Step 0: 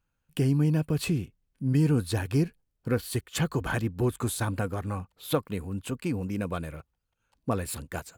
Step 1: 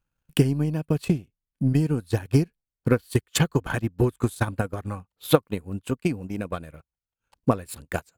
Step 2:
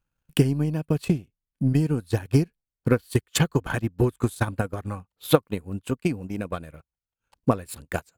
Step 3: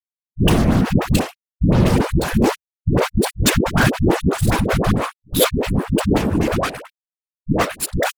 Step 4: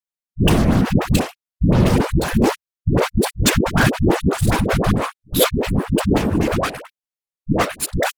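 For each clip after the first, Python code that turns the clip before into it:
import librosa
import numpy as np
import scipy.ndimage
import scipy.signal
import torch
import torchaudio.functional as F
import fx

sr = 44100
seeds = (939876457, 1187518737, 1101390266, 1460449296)

y1 = fx.transient(x, sr, attack_db=12, sustain_db=-12)
y1 = y1 * librosa.db_to_amplitude(-2.0)
y2 = y1
y3 = fx.fuzz(y2, sr, gain_db=32.0, gate_db=-39.0)
y3 = fx.whisperise(y3, sr, seeds[0])
y3 = fx.dispersion(y3, sr, late='highs', ms=114.0, hz=420.0)
y3 = y3 * librosa.db_to_amplitude(1.5)
y4 = fx.wow_flutter(y3, sr, seeds[1], rate_hz=2.1, depth_cents=28.0)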